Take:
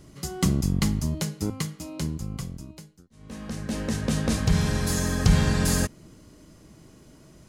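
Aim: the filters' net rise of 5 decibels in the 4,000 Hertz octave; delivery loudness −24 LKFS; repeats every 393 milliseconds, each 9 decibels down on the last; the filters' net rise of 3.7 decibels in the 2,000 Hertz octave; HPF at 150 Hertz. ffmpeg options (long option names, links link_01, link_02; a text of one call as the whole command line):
ffmpeg -i in.wav -af "highpass=150,equalizer=frequency=2000:width_type=o:gain=3.5,equalizer=frequency=4000:width_type=o:gain=5.5,aecho=1:1:393|786|1179|1572:0.355|0.124|0.0435|0.0152,volume=3dB" out.wav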